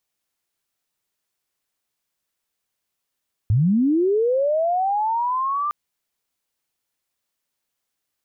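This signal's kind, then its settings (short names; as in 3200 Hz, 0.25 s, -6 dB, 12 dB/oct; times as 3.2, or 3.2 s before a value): chirp linear 94 Hz -> 1200 Hz -14 dBFS -> -20.5 dBFS 2.21 s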